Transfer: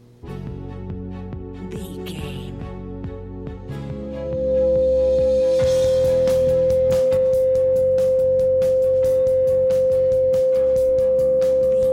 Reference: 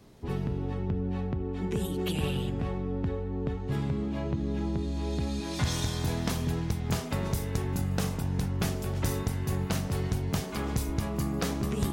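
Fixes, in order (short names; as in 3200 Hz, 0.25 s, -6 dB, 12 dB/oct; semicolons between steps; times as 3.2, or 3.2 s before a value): de-hum 120.2 Hz, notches 4; notch 520 Hz, Q 30; gain 0 dB, from 7.17 s +6 dB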